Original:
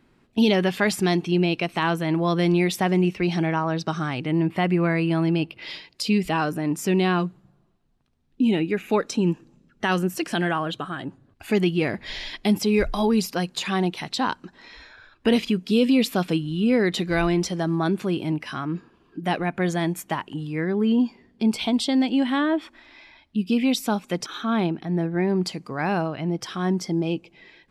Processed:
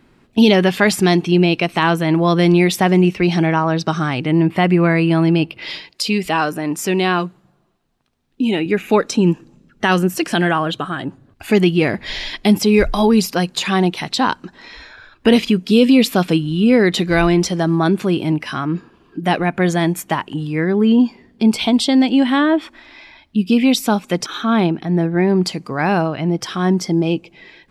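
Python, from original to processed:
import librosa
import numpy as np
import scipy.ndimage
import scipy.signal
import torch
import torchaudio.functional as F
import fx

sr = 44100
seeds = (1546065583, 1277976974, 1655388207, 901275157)

y = fx.low_shelf(x, sr, hz=240.0, db=-10.5, at=(5.9, 8.66))
y = y * 10.0 ** (7.5 / 20.0)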